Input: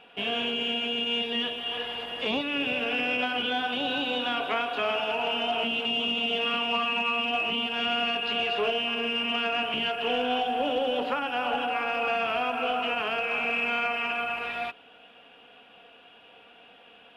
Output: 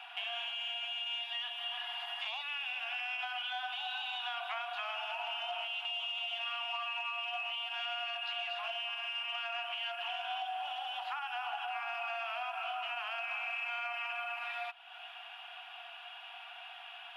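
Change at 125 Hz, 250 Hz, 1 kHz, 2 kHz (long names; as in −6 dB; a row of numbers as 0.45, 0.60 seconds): below −40 dB, below −40 dB, −9.5 dB, −9.0 dB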